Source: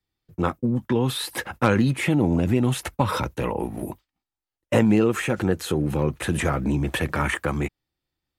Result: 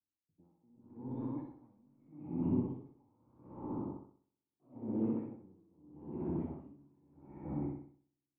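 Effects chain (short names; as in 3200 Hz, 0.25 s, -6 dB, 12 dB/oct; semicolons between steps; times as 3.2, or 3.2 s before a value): spectral trails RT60 0.36 s; HPF 57 Hz; bell 380 Hz -9.5 dB 0.69 oct; level quantiser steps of 9 dB; hard clip -26 dBFS, distortion -9 dB; vocal tract filter u; echoes that change speed 0.425 s, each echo +2 st, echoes 3, each echo -6 dB; flutter echo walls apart 10.9 m, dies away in 1.5 s; dB-linear tremolo 0.79 Hz, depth 34 dB; gain +1.5 dB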